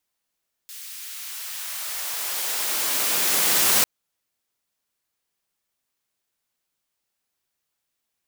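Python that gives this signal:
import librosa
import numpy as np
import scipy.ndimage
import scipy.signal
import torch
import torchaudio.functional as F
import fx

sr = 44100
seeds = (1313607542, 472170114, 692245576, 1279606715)

y = fx.riser_noise(sr, seeds[0], length_s=3.15, colour='white', kind='highpass', start_hz=2600.0, end_hz=110.0, q=0.71, swell_db=21, law='exponential')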